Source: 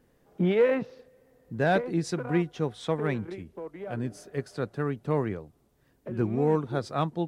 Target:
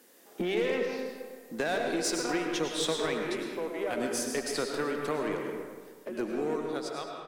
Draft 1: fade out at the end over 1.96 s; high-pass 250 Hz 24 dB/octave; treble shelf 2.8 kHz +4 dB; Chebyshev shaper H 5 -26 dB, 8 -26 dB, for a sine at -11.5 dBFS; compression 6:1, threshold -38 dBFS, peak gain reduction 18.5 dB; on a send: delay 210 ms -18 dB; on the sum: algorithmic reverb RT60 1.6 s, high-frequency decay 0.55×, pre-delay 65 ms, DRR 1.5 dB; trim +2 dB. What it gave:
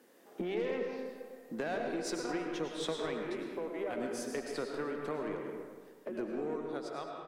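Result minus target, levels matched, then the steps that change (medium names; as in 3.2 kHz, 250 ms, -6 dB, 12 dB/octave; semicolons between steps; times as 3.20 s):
compression: peak gain reduction +5.5 dB; 4 kHz band -4.0 dB
change: treble shelf 2.8 kHz +15.5 dB; change: compression 6:1, threshold -31 dBFS, peak gain reduction 13.5 dB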